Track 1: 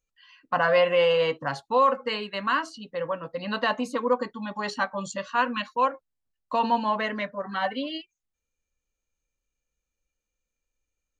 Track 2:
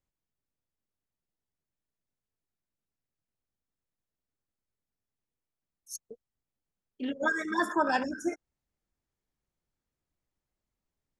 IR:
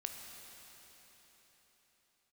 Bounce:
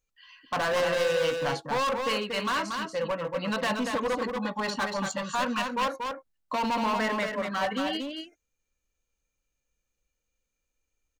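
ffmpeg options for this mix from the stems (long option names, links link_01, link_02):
-filter_complex "[0:a]asoftclip=type=hard:threshold=-26.5dB,volume=1.5dB,asplit=2[link_01][link_02];[link_02]volume=-5dB[link_03];[1:a]acompressor=threshold=-37dB:ratio=4,volume=-16.5dB[link_04];[link_03]aecho=0:1:234:1[link_05];[link_01][link_04][link_05]amix=inputs=3:normalize=0"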